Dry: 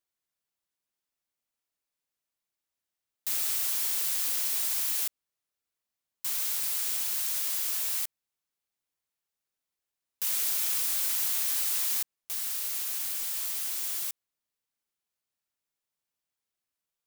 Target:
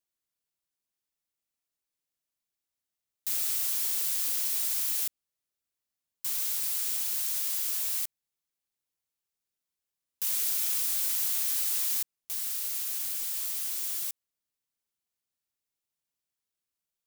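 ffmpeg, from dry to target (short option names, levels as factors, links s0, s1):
-af "equalizer=f=1100:w=0.37:g=-4.5"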